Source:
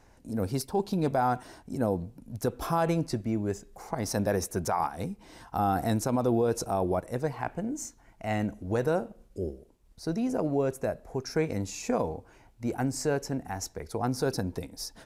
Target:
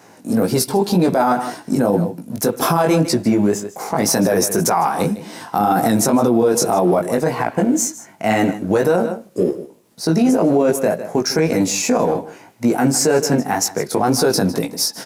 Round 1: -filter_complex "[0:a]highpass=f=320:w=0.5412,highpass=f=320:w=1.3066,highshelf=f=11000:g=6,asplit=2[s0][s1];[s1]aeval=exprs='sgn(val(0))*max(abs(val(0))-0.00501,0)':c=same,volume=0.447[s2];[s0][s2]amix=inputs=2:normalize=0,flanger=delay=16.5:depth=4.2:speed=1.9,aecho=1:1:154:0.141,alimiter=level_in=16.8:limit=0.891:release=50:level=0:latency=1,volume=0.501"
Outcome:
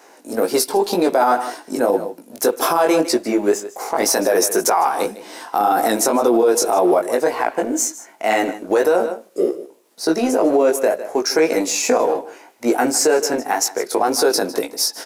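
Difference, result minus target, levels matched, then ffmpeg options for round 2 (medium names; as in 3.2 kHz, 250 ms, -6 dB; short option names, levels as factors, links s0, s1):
125 Hz band -18.0 dB
-filter_complex "[0:a]highpass=f=150:w=0.5412,highpass=f=150:w=1.3066,highshelf=f=11000:g=6,asplit=2[s0][s1];[s1]aeval=exprs='sgn(val(0))*max(abs(val(0))-0.00501,0)':c=same,volume=0.447[s2];[s0][s2]amix=inputs=2:normalize=0,flanger=delay=16.5:depth=4.2:speed=1.9,aecho=1:1:154:0.141,alimiter=level_in=16.8:limit=0.891:release=50:level=0:latency=1,volume=0.501"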